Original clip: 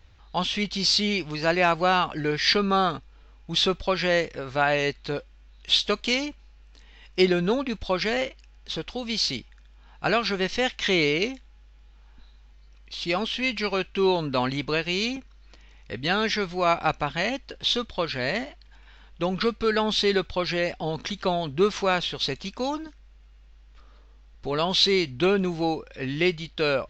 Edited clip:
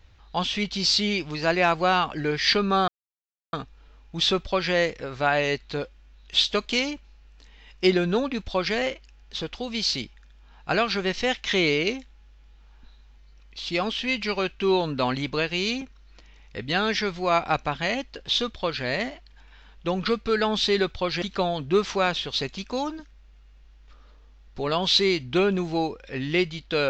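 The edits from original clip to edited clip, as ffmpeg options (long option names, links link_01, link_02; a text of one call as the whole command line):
ffmpeg -i in.wav -filter_complex "[0:a]asplit=3[link_01][link_02][link_03];[link_01]atrim=end=2.88,asetpts=PTS-STARTPTS,afade=type=out:start_time=2.876:duration=0.004:curve=hsin,apad=pad_dur=0.65[link_04];[link_02]atrim=start=2.88:end=20.572,asetpts=PTS-STARTPTS,afade=type=in:duration=0.004:curve=hsin[link_05];[link_03]atrim=start=21.088[link_06];[link_04][link_05]concat=n=2:v=0:a=1[link_07];[link_07][link_06]acrossfade=duration=0.004:curve1=hsin:curve2=hsin" out.wav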